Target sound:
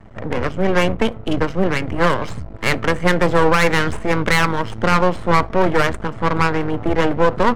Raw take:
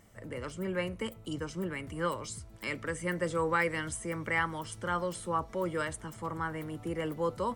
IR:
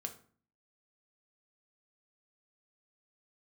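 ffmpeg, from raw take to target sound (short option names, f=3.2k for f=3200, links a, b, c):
-filter_complex "[0:a]acontrast=39,aeval=exprs='max(val(0),0)':c=same,adynamicsmooth=sensitivity=5.5:basefreq=1.7k,asplit=2[a][b];[1:a]atrim=start_sample=2205,afade=t=out:st=0.15:d=0.01,atrim=end_sample=7056[c];[b][c]afir=irnorm=-1:irlink=0,volume=-15dB[d];[a][d]amix=inputs=2:normalize=0,alimiter=level_in=17dB:limit=-1dB:release=50:level=0:latency=1,volume=-1dB"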